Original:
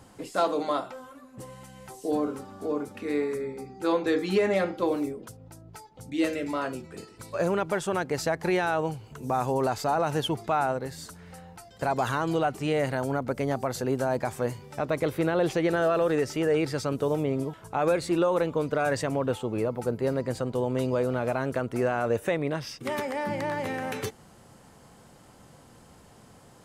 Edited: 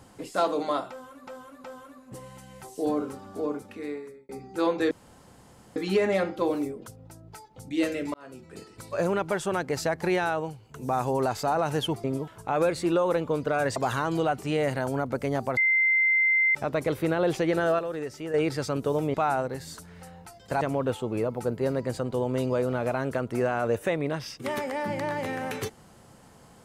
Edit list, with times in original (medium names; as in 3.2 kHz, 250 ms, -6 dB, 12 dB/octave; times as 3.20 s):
0.90–1.27 s: loop, 3 plays
2.68–3.55 s: fade out
4.17 s: insert room tone 0.85 s
6.55–7.09 s: fade in
8.68–9.15 s: fade out quadratic, to -7.5 dB
10.45–11.92 s: swap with 17.30–19.02 s
13.73–14.71 s: bleep 2.08 kHz -19 dBFS
15.95–16.50 s: gain -8 dB